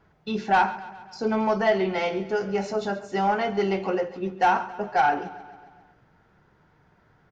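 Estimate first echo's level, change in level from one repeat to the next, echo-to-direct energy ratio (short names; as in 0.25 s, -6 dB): -17.0 dB, -4.5 dB, -15.0 dB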